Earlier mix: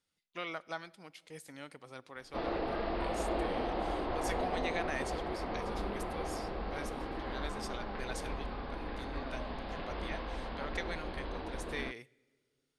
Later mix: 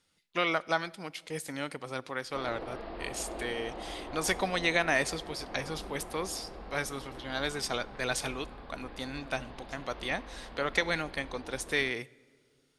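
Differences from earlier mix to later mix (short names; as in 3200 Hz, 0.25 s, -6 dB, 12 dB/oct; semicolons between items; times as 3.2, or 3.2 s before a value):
speech +11.5 dB; background -6.5 dB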